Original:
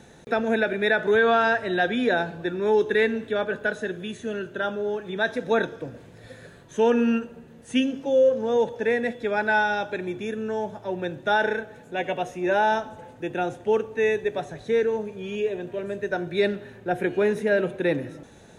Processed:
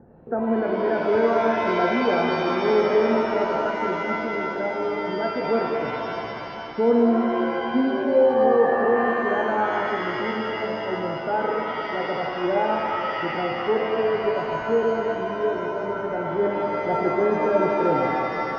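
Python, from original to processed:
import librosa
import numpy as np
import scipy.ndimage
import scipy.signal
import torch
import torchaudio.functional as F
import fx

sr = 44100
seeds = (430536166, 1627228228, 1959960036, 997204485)

y = scipy.signal.sosfilt(scipy.signal.bessel(8, 800.0, 'lowpass', norm='mag', fs=sr, output='sos'), x)
y = fx.rev_shimmer(y, sr, seeds[0], rt60_s=3.0, semitones=7, shimmer_db=-2, drr_db=1.5)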